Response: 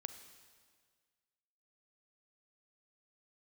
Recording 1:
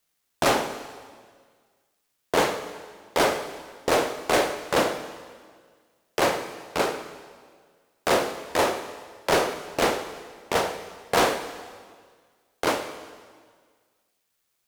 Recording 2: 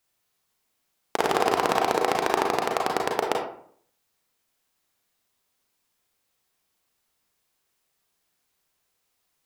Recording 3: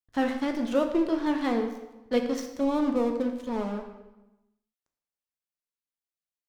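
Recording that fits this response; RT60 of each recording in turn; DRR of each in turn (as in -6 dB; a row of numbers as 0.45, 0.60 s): 1; 1.8, 0.60, 1.0 s; 9.5, 0.0, 4.5 dB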